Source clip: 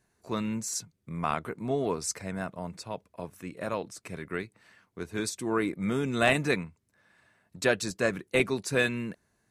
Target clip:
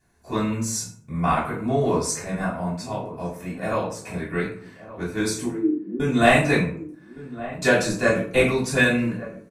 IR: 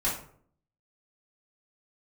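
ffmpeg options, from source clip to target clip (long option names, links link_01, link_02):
-filter_complex "[0:a]asettb=1/sr,asplit=3[link_01][link_02][link_03];[link_01]atrim=end=5.464[link_04];[link_02]atrim=start=5.46:end=6,asetpts=PTS-STARTPTS,afade=type=in:duration=0.004:curve=qsin,afade=type=out:start_time=0.536:duration=0.004:curve=qsin,asuperpass=centerf=310:order=4:qfactor=3.1[link_05];[link_03]atrim=start=5.996[link_06];[link_04][link_05]acrossfade=duration=0.004:curve1=hsin:curve2=qsin[link_07];[link_07][link_06]acrossfade=duration=0.004:curve1=qsin:curve2=hsin,asplit=2[link_08][link_09];[link_09]adelay=1166,volume=-15dB,highshelf=frequency=4000:gain=-26.2[link_10];[link_08][link_10]amix=inputs=2:normalize=0[link_11];[1:a]atrim=start_sample=2205[link_12];[link_11][link_12]afir=irnorm=-1:irlink=0,volume=-1dB"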